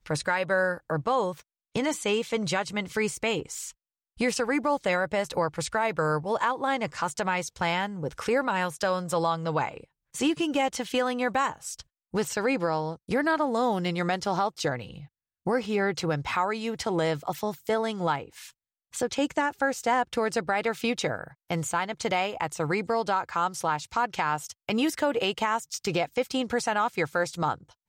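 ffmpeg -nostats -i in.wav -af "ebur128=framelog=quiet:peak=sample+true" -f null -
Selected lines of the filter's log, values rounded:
Integrated loudness:
  I:         -28.0 LUFS
  Threshold: -38.2 LUFS
Loudness range:
  LRA:         1.5 LU
  Threshold: -48.3 LUFS
  LRA low:   -29.1 LUFS
  LRA high:  -27.6 LUFS
Sample peak:
  Peak:      -12.8 dBFS
True peak:
  Peak:      -12.8 dBFS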